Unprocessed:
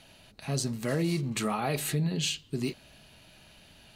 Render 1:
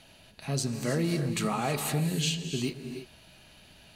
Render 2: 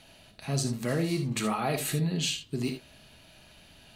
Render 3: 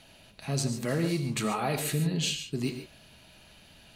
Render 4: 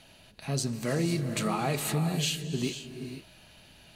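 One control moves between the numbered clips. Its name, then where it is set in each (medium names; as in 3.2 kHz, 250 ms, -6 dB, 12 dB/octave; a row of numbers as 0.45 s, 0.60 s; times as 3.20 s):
gated-style reverb, gate: 350 ms, 90 ms, 160 ms, 530 ms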